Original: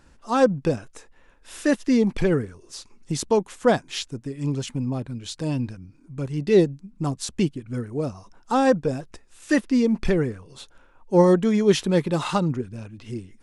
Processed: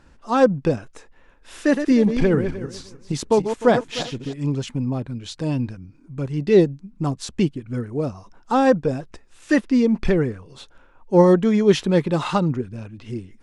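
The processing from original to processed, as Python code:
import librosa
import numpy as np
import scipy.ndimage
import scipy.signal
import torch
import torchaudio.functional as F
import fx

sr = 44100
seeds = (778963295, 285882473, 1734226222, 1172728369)

y = fx.reverse_delay_fb(x, sr, ms=152, feedback_pct=41, wet_db=-8, at=(1.6, 4.34))
y = fx.high_shelf(y, sr, hz=7700.0, db=-12.0)
y = F.gain(torch.from_numpy(y), 2.5).numpy()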